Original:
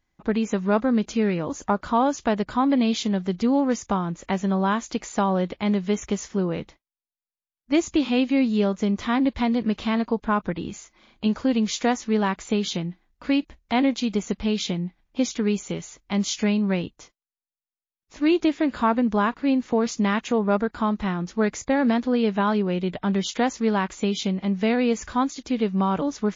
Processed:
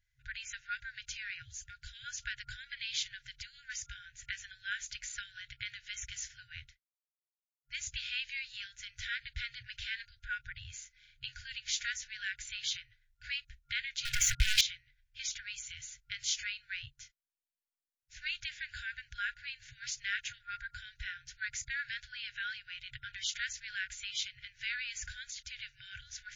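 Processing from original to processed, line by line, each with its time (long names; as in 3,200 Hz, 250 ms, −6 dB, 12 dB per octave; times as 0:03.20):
0:01.42–0:02.04: phaser with its sweep stopped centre 490 Hz, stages 4
0:06.61–0:07.86: duck −20.5 dB, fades 0.27 s
0:14.05–0:14.61: leveller curve on the samples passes 5
whole clip: brick-wall band-stop 130–1,400 Hz; level −4.5 dB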